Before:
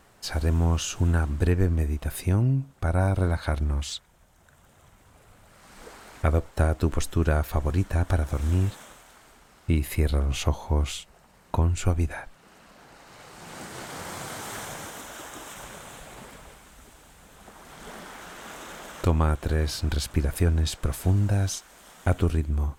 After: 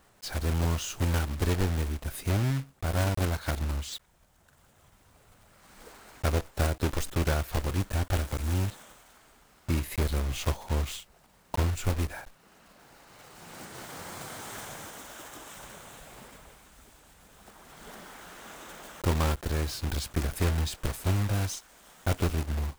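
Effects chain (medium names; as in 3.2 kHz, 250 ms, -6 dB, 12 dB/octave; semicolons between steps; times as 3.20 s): block-companded coder 3-bit; trim -5 dB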